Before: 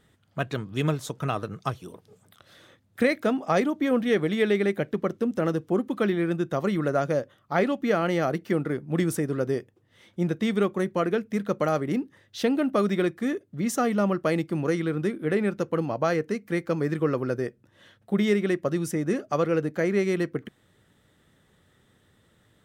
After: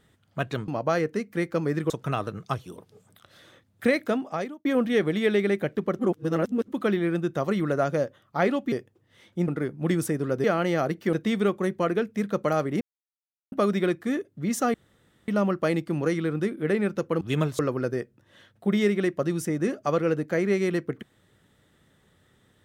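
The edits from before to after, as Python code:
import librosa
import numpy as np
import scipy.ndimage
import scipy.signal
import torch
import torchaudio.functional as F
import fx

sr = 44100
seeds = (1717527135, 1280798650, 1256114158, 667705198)

y = fx.edit(x, sr, fx.swap(start_s=0.68, length_s=0.38, other_s=15.83, other_length_s=1.22),
    fx.fade_out_span(start_s=3.2, length_s=0.61),
    fx.reverse_span(start_s=5.15, length_s=0.69),
    fx.swap(start_s=7.88, length_s=0.69, other_s=9.53, other_length_s=0.76),
    fx.silence(start_s=11.97, length_s=0.71),
    fx.insert_room_tone(at_s=13.9, length_s=0.54), tone=tone)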